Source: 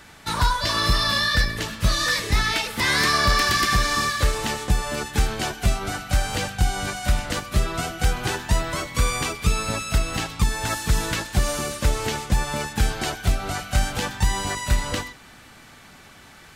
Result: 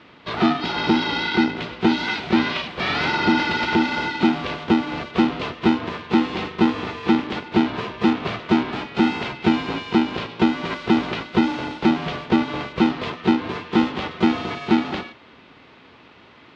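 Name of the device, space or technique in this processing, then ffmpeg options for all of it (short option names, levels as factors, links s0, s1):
ring modulator pedal into a guitar cabinet: -af "aeval=exprs='val(0)*sgn(sin(2*PI*280*n/s))':c=same,highpass=82,equalizer=f=270:t=q:w=4:g=8,equalizer=f=550:t=q:w=4:g=-3,equalizer=f=1700:t=q:w=4:g=-5,lowpass=f=3700:w=0.5412,lowpass=f=3700:w=1.3066"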